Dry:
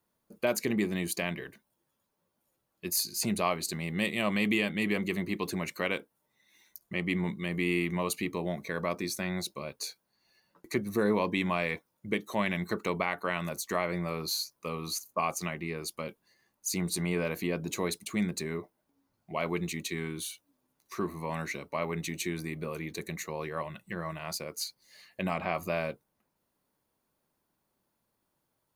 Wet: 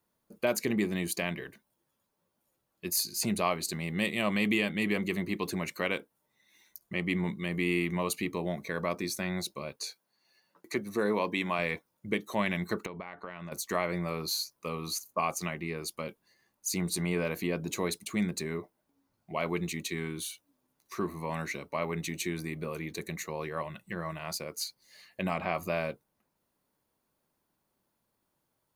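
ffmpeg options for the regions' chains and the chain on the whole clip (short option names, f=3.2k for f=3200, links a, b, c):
-filter_complex "[0:a]asettb=1/sr,asplit=3[a][b][c];[a]atrim=end=9.764[d];[b]atrim=start=9.76:end=11.59,asetpts=PTS-STARTPTS,afade=t=in:d=0.004:c=qsin,afade=t=out:st=1.826:d=0.004:c=qsin,highpass=f=260:p=1,acrossover=split=9900[e][f];[f]acompressor=threshold=-54dB:ratio=4:attack=1:release=60[g];[e][g]amix=inputs=2:normalize=0[h];[c]atrim=start=11.586[i];[d][h]acrossfade=d=0.004:c1=hsin:c2=qsin[j];[j][i]acrossfade=d=0.004:c1=qsin:c2=hsin,asettb=1/sr,asplit=3[k][l][m];[k]atrim=end=12.864[n];[l]atrim=start=12.86:end=13.52,asetpts=PTS-STARTPTS,afade=t=in:d=0.004:c=qsin,afade=t=out:st=0.656:d=0.004:c=qsin,lowpass=5.2k,acompressor=threshold=-37dB:ratio=5:attack=3.2:release=140:knee=1:detection=peak,highshelf=f=3.2k:g=-7.5[o];[m]atrim=start=13.516[p];[n][o]acrossfade=d=0.004:c1=hsin:c2=qsin[q];[q][p]acrossfade=d=0.004:c1=qsin:c2=hsin"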